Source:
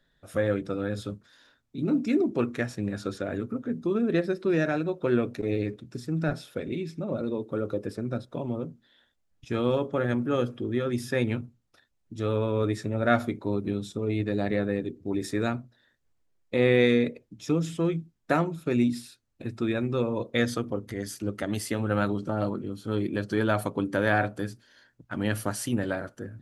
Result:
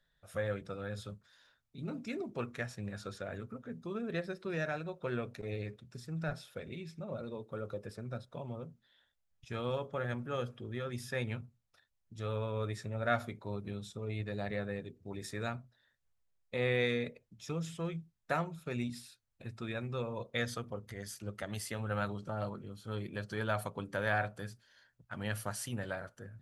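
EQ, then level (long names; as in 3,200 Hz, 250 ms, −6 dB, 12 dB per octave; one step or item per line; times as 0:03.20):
parametric band 300 Hz −13 dB 0.85 octaves
−6.5 dB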